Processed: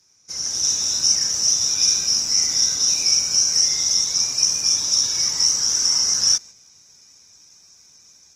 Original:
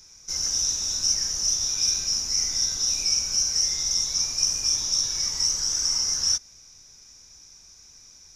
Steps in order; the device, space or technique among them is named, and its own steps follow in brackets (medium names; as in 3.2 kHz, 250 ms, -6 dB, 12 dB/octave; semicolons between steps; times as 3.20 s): video call (high-pass 110 Hz 12 dB/octave; level rider gain up to 6 dB; gate -35 dBFS, range -6 dB; Opus 20 kbps 48 kHz)